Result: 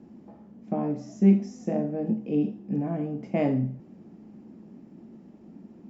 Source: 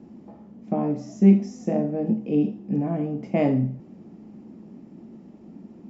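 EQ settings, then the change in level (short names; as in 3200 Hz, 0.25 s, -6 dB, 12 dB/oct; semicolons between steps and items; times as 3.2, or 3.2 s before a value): bell 1600 Hz +3.5 dB 0.25 oct; -3.5 dB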